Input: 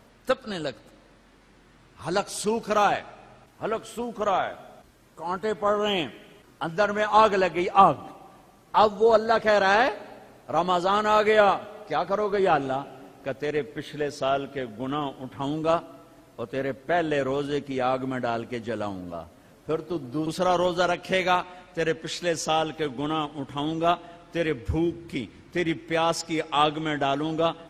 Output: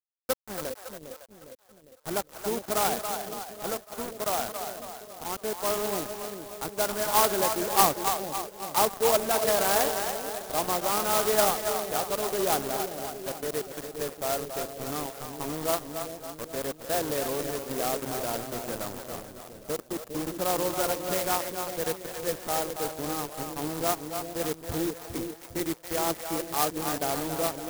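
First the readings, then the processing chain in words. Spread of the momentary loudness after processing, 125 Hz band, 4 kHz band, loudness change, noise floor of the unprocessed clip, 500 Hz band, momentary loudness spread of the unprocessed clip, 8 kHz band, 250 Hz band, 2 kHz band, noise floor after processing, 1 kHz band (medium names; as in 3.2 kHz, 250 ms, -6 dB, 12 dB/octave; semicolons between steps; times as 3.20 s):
13 LU, -6.0 dB, -1.5 dB, -3.5 dB, -56 dBFS, -4.5 dB, 14 LU, +10.0 dB, -5.0 dB, -6.5 dB, -51 dBFS, -5.5 dB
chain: bass shelf 130 Hz -8 dB; bit crusher 5-bit; two-band feedback delay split 540 Hz, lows 405 ms, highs 278 ms, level -6.5 dB; careless resampling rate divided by 8×, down filtered, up hold; sampling jitter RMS 0.11 ms; trim -4.5 dB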